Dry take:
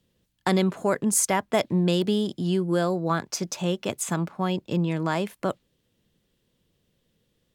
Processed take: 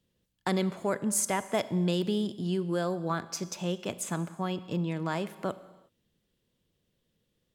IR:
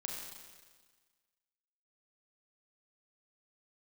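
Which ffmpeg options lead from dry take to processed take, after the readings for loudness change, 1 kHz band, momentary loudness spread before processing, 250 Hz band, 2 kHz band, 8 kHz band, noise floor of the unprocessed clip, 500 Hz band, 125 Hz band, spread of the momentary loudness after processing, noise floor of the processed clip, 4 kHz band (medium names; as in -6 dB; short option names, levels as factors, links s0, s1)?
-5.5 dB, -6.0 dB, 7 LU, -5.5 dB, -5.5 dB, -6.0 dB, -73 dBFS, -6.0 dB, -5.5 dB, 7 LU, -78 dBFS, -5.5 dB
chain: -filter_complex "[0:a]asplit=2[s0][s1];[1:a]atrim=start_sample=2205,afade=t=out:st=0.43:d=0.01,atrim=end_sample=19404[s2];[s1][s2]afir=irnorm=-1:irlink=0,volume=0.299[s3];[s0][s3]amix=inputs=2:normalize=0,volume=0.422"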